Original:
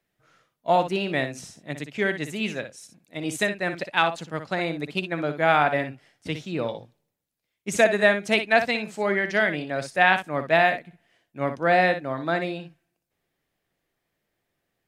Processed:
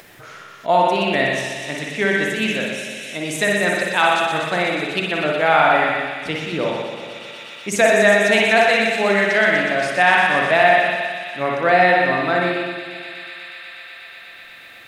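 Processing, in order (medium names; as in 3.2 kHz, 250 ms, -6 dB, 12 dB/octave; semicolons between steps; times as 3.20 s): spring tank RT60 1.4 s, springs 45/55 ms, chirp 75 ms, DRR -1 dB; in parallel at +1 dB: peak limiter -12 dBFS, peak gain reduction 9 dB; on the sum: bass shelf 240 Hz -8 dB; feedback echo behind a high-pass 122 ms, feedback 83%, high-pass 3.3 kHz, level -5 dB; upward compressor, threshold -24 dBFS; trim -1 dB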